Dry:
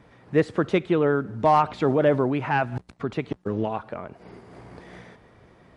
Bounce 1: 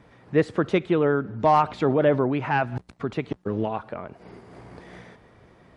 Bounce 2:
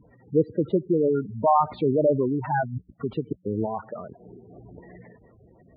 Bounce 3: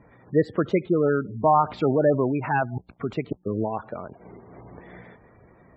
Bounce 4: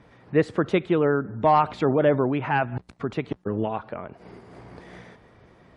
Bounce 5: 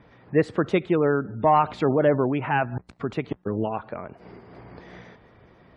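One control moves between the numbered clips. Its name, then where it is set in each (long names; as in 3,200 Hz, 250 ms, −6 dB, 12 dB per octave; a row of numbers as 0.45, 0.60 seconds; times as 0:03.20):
gate on every frequency bin, under each frame's peak: −60, −10, −20, −45, −35 decibels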